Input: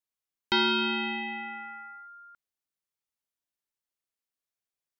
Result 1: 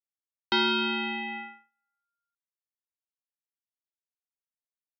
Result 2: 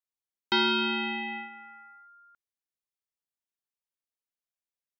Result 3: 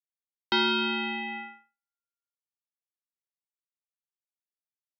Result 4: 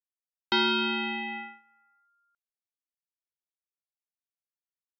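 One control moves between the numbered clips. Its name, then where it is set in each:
gate, range: -40 dB, -7 dB, -56 dB, -23 dB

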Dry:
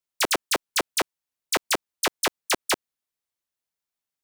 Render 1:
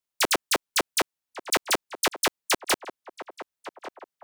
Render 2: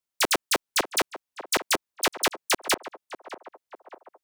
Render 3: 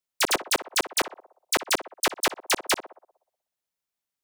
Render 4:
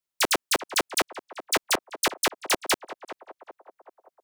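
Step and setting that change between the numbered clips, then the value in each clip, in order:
band-passed feedback delay, time: 1143 ms, 602 ms, 61 ms, 384 ms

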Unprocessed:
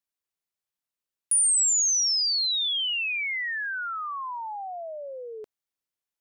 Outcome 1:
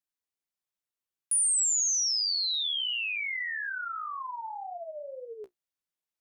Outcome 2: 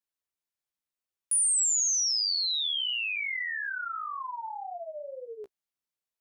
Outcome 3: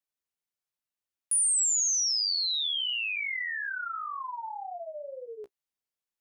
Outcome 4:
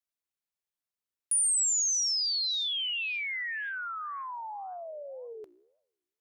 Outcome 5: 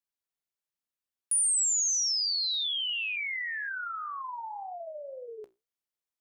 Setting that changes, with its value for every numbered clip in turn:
flange, regen: +32%, +7%, -14%, +91%, -64%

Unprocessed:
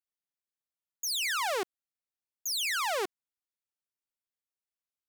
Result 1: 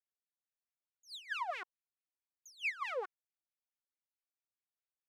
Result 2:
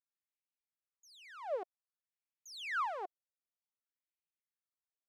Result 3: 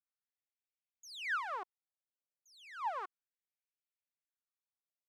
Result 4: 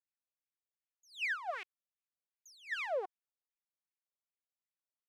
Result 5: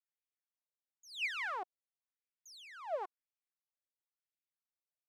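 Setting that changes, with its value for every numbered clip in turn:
wah-wah, rate: 4.6 Hz, 0.53 Hz, 0.33 Hz, 2.6 Hz, 0.97 Hz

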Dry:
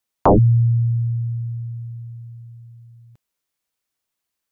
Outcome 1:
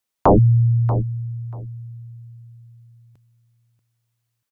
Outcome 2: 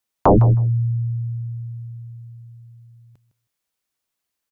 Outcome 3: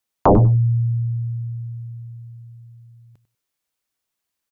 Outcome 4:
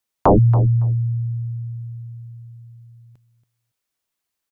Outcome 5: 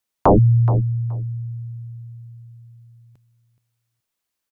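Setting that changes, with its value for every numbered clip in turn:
feedback delay, time: 636 ms, 158 ms, 97 ms, 280 ms, 424 ms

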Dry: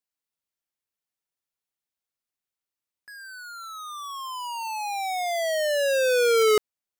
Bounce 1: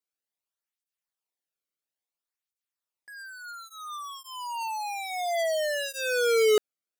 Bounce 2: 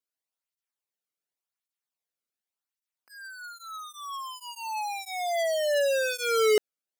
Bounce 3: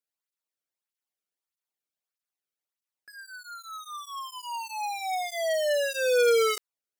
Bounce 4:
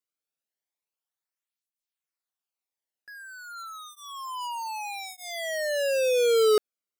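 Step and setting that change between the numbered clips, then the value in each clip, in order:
cancelling through-zero flanger, nulls at: 0.59 Hz, 0.89 Hz, 1.6 Hz, 0.29 Hz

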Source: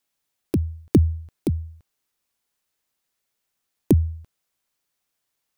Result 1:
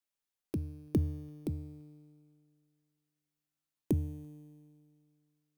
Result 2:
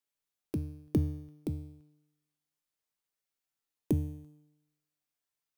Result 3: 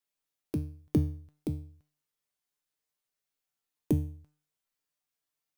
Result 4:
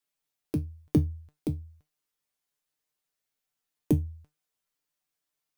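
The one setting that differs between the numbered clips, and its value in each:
feedback comb, decay: 2.2 s, 0.91 s, 0.43 s, 0.18 s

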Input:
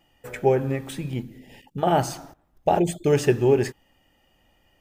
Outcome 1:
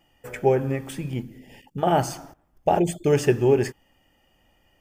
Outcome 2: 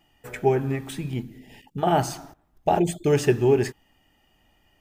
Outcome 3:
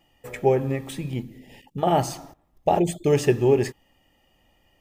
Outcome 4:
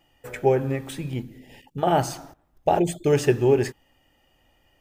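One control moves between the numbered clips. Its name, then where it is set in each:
band-stop, frequency: 3.9 kHz, 530 Hz, 1.5 kHz, 200 Hz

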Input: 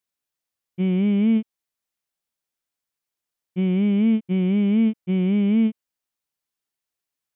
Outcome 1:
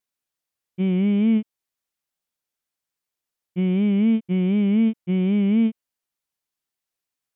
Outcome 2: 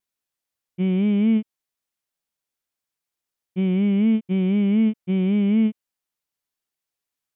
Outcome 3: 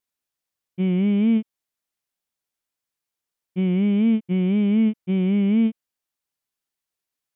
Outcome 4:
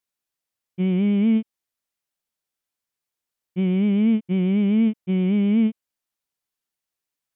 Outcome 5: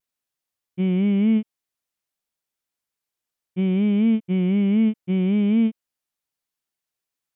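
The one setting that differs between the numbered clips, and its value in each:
vibrato, rate: 2.7 Hz, 1.2 Hz, 1.8 Hz, 8.1 Hz, 0.59 Hz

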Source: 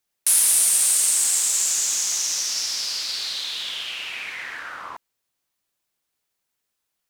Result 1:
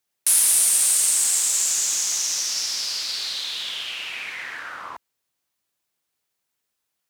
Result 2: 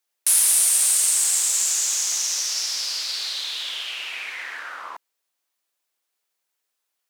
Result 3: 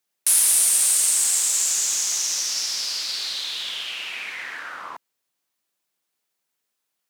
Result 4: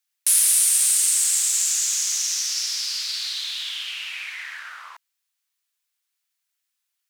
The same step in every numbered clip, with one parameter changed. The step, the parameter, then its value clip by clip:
high-pass, cutoff frequency: 53 Hz, 380 Hz, 150 Hz, 1.5 kHz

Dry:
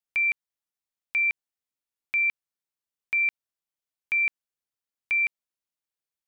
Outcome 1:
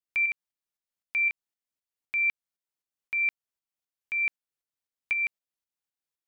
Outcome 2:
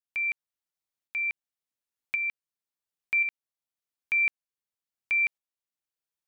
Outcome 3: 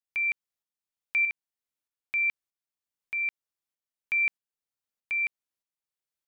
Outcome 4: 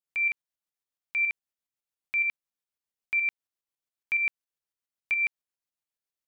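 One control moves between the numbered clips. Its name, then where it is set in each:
tremolo, rate: 3.9 Hz, 0.93 Hz, 1.6 Hz, 7.2 Hz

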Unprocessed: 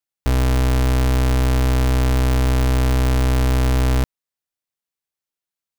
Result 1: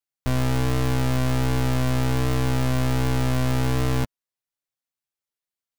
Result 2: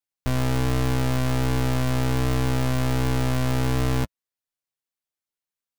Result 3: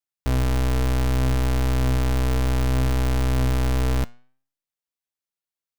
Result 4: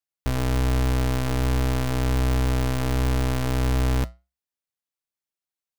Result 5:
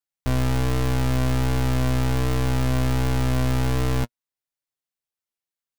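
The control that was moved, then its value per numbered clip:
flange, regen: +4%, -16%, +90%, -81%, +26%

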